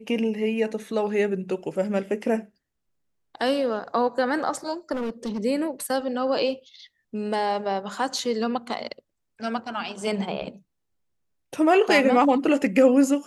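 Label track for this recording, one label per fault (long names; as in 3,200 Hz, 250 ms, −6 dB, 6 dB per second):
4.920000	5.400000	clipping −25 dBFS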